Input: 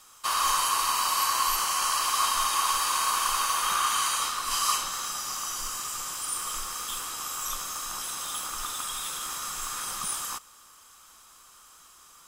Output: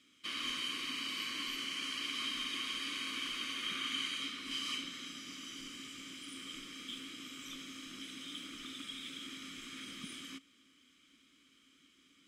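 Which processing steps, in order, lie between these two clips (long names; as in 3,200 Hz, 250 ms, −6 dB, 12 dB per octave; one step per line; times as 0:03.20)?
formant filter i
low-shelf EQ 390 Hz +9 dB
level +6 dB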